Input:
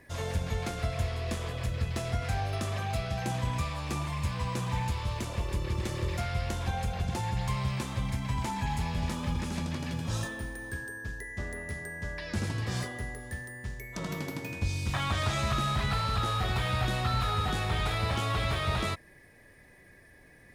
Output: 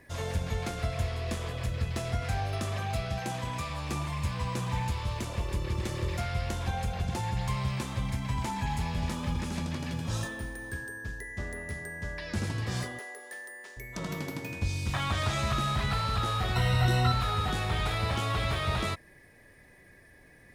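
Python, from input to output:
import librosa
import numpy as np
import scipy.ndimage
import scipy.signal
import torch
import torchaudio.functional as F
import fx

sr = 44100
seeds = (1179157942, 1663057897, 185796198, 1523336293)

y = fx.low_shelf(x, sr, hz=130.0, db=-9.5, at=(3.18, 3.7))
y = fx.highpass(y, sr, hz=400.0, slope=24, at=(12.99, 13.77))
y = fx.ripple_eq(y, sr, per_octave=2.0, db=15, at=(16.55, 17.12))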